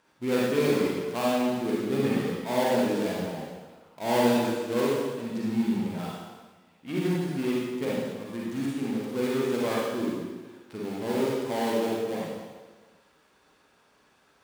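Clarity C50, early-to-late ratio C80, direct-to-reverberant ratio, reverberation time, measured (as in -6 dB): -3.0 dB, 0.5 dB, -5.5 dB, 1.4 s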